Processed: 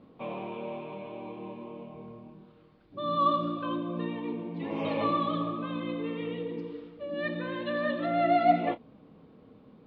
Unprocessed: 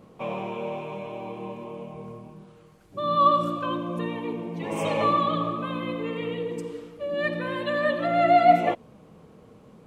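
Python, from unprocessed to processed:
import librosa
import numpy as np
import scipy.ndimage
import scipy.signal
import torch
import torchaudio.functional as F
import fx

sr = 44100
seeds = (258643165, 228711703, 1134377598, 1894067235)

y = scipy.signal.sosfilt(scipy.signal.butter(8, 4600.0, 'lowpass', fs=sr, output='sos'), x)
y = fx.doubler(y, sr, ms=29.0, db=-14.0)
y = fx.small_body(y, sr, hz=(270.0, 3600.0), ring_ms=45, db=9)
y = F.gain(torch.from_numpy(y), -6.5).numpy()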